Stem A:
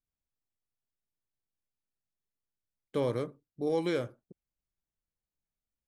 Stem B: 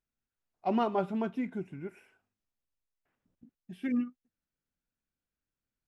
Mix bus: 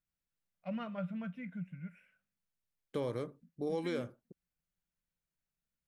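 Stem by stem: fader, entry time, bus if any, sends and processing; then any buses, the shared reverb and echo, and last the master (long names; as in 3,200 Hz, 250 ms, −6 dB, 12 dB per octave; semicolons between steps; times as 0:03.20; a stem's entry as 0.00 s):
−2.0 dB, 0.00 s, no send, no processing
−10.0 dB, 0.00 s, no send, drawn EQ curve 120 Hz 0 dB, 170 Hz +15 dB, 380 Hz −23 dB, 540 Hz +6 dB, 810 Hz −13 dB, 1,400 Hz +5 dB, 2,200 Hz +7 dB, 5,000 Hz −5 dB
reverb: not used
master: downward compressor 2 to 1, threshold −35 dBFS, peak gain reduction 5 dB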